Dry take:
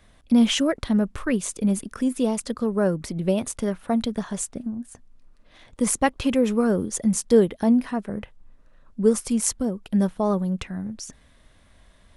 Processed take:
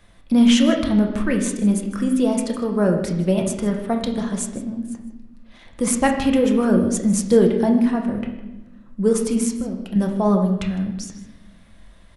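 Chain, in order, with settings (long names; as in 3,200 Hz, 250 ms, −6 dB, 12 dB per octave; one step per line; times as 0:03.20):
0:09.40–0:09.96: downward compressor, threshold −28 dBFS, peak gain reduction 9 dB
single-tap delay 156 ms −17.5 dB
convolution reverb RT60 1.1 s, pre-delay 6 ms, DRR 2.5 dB
level +1.5 dB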